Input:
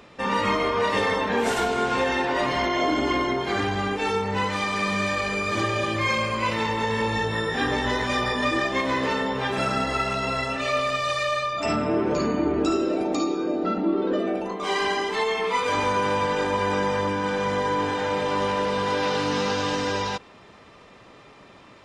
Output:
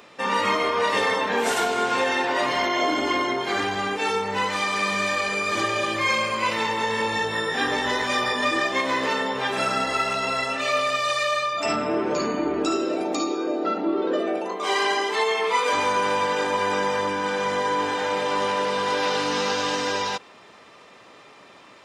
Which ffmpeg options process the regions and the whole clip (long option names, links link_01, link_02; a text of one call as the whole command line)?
ffmpeg -i in.wav -filter_complex "[0:a]asettb=1/sr,asplit=3[link_01][link_02][link_03];[link_01]atrim=end=13.304[link_04];[link_02]atrim=start=13.3:end=15.73,asetpts=PTS-STARTPTS,afade=type=in:duration=0.004:curve=qsin,afade=type=out:start_time=2.426:duration=0.004:curve=qsin,highpass=310,lowshelf=frequency=480:gain=5[link_05];[link_03]atrim=start=15.726[link_06];[link_04][link_05]acrossfade=duration=0.004:curve1=hsin:curve2=qsin[link_07];[link_07][link_06]acrossfade=duration=0.004:curve1=qsin:curve2=hsin,highpass=frequency=390:poles=1,highshelf=frequency=7700:gain=5.5,volume=2dB" out.wav